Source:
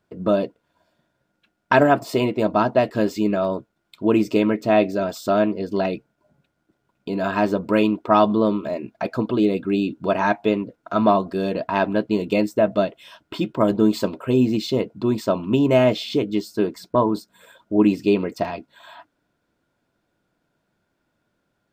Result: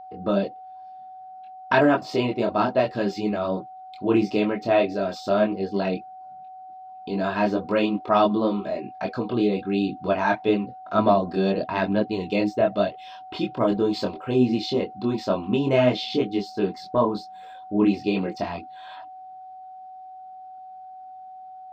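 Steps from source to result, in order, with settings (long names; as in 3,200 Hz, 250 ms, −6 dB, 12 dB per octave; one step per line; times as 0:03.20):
multi-voice chorus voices 4, 0.99 Hz, delay 23 ms, depth 3 ms
steady tone 750 Hz −39 dBFS
high shelf with overshoot 7,100 Hz −13.5 dB, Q 1.5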